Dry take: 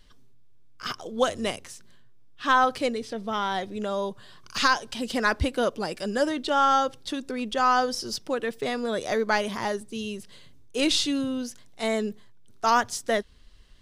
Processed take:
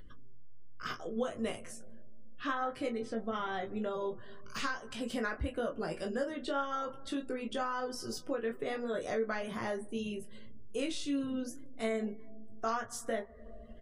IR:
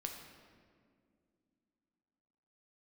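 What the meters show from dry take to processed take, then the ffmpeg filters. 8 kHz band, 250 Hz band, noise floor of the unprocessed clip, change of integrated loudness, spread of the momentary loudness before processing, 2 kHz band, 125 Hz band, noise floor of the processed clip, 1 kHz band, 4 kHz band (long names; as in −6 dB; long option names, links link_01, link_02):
−12.0 dB, −7.5 dB, −49 dBFS, −10.5 dB, 13 LU, −12.0 dB, −7.5 dB, −48 dBFS, −13.5 dB, −15.0 dB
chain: -filter_complex "[0:a]equalizer=frequency=880:width_type=o:width=0.2:gain=-11.5,asplit=2[link_01][link_02];[1:a]atrim=start_sample=2205,adelay=20[link_03];[link_02][link_03]afir=irnorm=-1:irlink=0,volume=-18.5dB[link_04];[link_01][link_04]amix=inputs=2:normalize=0,flanger=delay=2.1:depth=5:regen=-86:speed=1.8:shape=sinusoidal,acompressor=threshold=-33dB:ratio=6,aecho=1:1:18|31|43:0.631|0.299|0.251,acompressor=mode=upward:threshold=-38dB:ratio=2.5,equalizer=frequency=4400:width_type=o:width=1.3:gain=-8.5,afftdn=noise_reduction=20:noise_floor=-59"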